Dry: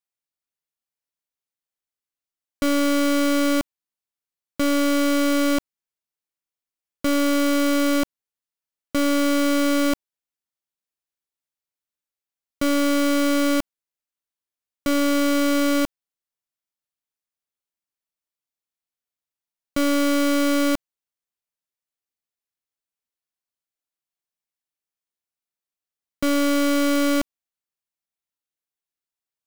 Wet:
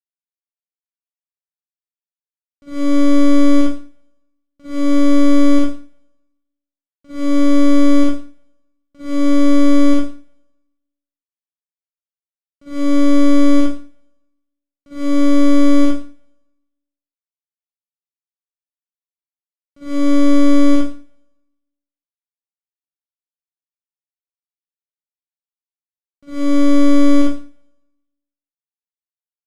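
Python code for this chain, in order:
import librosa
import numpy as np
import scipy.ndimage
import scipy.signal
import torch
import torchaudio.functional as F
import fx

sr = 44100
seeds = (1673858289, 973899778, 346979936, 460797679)

y = scipy.signal.sosfilt(scipy.signal.butter(2, 8400.0, 'lowpass', fs=sr, output='sos'), x)
y = fx.low_shelf(y, sr, hz=480.0, db=9.0)
y = fx.hum_notches(y, sr, base_hz=50, count=8)
y = np.sign(y) * np.maximum(np.abs(y) - 10.0 ** (-50.5 / 20.0), 0.0)
y = fx.rev_schroeder(y, sr, rt60_s=1.1, comb_ms=38, drr_db=-7.5)
y = fx.upward_expand(y, sr, threshold_db=-10.0, expansion=2.5)
y = y * librosa.db_to_amplitude(-10.0)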